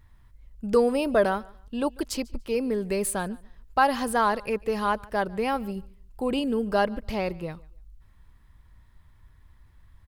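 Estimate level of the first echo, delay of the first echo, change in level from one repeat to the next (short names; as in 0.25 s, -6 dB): -24.0 dB, 0.145 s, no steady repeat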